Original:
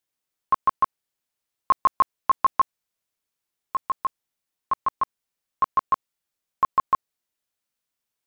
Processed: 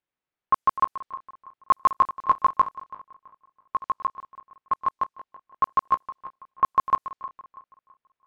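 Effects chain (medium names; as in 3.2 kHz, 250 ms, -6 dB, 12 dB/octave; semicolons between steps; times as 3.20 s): backward echo that repeats 165 ms, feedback 55%, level -14 dB; level-controlled noise filter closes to 2.4 kHz, open at -19 dBFS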